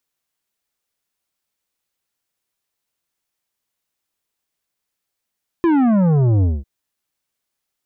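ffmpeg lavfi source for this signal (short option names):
-f lavfi -i "aevalsrc='0.224*clip((1-t)/0.21,0,1)*tanh(3.35*sin(2*PI*350*1/log(65/350)*(exp(log(65/350)*t/1)-1)))/tanh(3.35)':d=1:s=44100"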